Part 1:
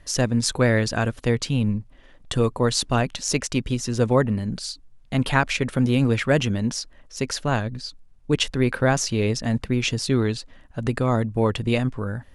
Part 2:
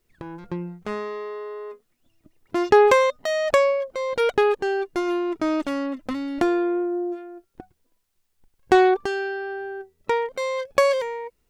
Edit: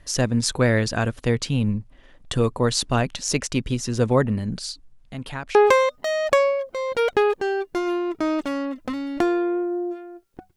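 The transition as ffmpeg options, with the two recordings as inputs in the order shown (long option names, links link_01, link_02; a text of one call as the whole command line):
ffmpeg -i cue0.wav -i cue1.wav -filter_complex "[0:a]asettb=1/sr,asplit=3[link_01][link_02][link_03];[link_01]atrim=end=4.934[link_04];[link_02]atrim=start=4.93:end=5.55,asetpts=PTS-STARTPTS,afade=type=in:duration=0.004:curve=qsin,afade=type=out:start_time=0.616:duration=0.004:curve=qsin,acompressor=threshold=-49dB:ratio=1.5:attack=3.2:release=140:knee=1:detection=peak[link_05];[link_03]atrim=start=5.546[link_06];[link_04][link_05]acrossfade=duration=0.004:curve1=hsin:curve2=qsin[link_07];[link_07][link_06]acrossfade=duration=0.004:curve1=qsin:curve2=hsin,apad=whole_dur=10.56,atrim=end=10.56,atrim=end=5.552[link_08];[1:a]atrim=start=2.758:end=7.77[link_09];[link_08][link_09]acrossfade=duration=0.004:curve1=hsin:curve2=hsin" out.wav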